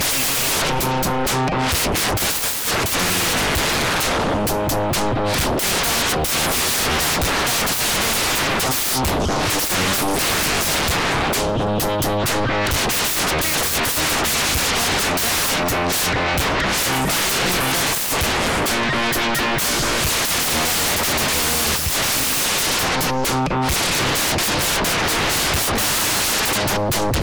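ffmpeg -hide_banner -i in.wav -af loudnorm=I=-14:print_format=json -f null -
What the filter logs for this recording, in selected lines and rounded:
"input_i" : "-17.9",
"input_tp" : "-12.3",
"input_lra" : "0.9",
"input_thresh" : "-27.9",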